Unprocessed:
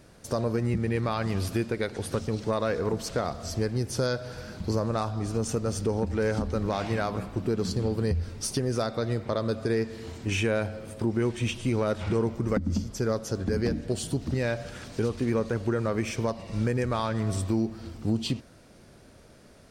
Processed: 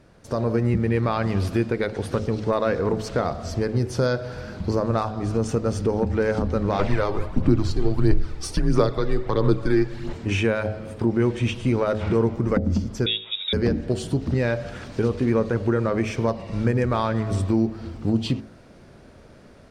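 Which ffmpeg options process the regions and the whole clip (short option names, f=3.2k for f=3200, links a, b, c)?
-filter_complex "[0:a]asettb=1/sr,asplit=3[a][b][c];[a]atrim=end=6.794[d];[b]atrim=start=6.79:end=10.13,asetpts=PTS-STARTPTS,afade=t=in:d=0.004:c=qsin,afade=t=out:st=3.336:d=0.004:c=qsin,afreqshift=-100,aphaser=in_gain=1:out_gain=1:delay=2.6:decay=0.45:speed=1.5:type=sinusoidal[e];[c]atrim=start=10.126[f];[d][e]acrossfade=d=0.004:c1=hsin:c2=qsin[g];[g][f]acrossfade=d=0.004:c1=qsin:c2=hsin,asettb=1/sr,asplit=3[h][i][j];[h]atrim=end=13.064[k];[i]atrim=start=13.06:end=13.53,asetpts=PTS-STARTPTS,afade=t=in:d=0.004:c=qsin,afade=t=out:st=0.466:d=0.004:c=qsin,highpass=110,lowpass=f=3.3k:t=q:w=0.5098,lowpass=f=3.3k:t=q:w=0.6013,lowpass=f=3.3k:t=q:w=0.9,lowpass=f=3.3k:t=q:w=2.563,afreqshift=-3900[l];[j]atrim=start=13.526[m];[k][l]acrossfade=d=0.004:c1=hsin:c2=qsin[n];[n][m]acrossfade=d=0.004:c1=qsin:c2=hsin,lowpass=f=2.5k:p=1,bandreject=f=53.69:t=h:w=4,bandreject=f=107.38:t=h:w=4,bandreject=f=161.07:t=h:w=4,bandreject=f=214.76:t=h:w=4,bandreject=f=268.45:t=h:w=4,bandreject=f=322.14:t=h:w=4,bandreject=f=375.83:t=h:w=4,bandreject=f=429.52:t=h:w=4,bandreject=f=483.21:t=h:w=4,bandreject=f=536.9:t=h:w=4,bandreject=f=590.59:t=h:w=4,bandreject=f=644.28:t=h:w=4,bandreject=f=697.97:t=h:w=4,bandreject=f=751.66:t=h:w=4,bandreject=f=805.35:t=h:w=4,dynaudnorm=f=240:g=3:m=5dB,volume=1dB"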